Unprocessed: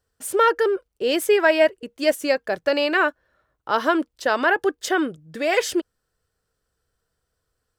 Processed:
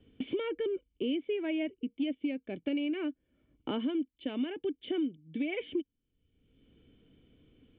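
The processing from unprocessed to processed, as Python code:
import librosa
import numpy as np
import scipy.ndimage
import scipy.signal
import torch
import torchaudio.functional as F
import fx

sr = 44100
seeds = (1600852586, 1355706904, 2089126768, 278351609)

y = fx.formant_cascade(x, sr, vowel='i')
y = fx.band_squash(y, sr, depth_pct=100)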